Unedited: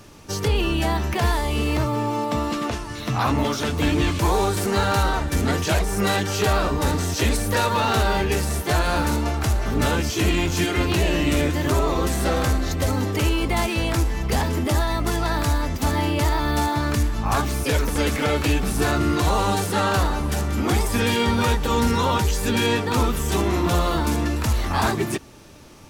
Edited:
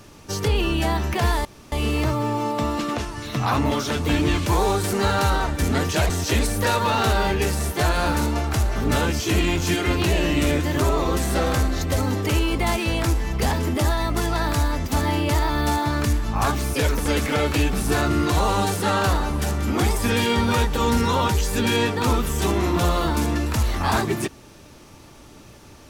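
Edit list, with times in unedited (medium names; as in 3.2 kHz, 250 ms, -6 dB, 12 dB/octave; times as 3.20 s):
1.45 s: insert room tone 0.27 s
5.83–7.00 s: delete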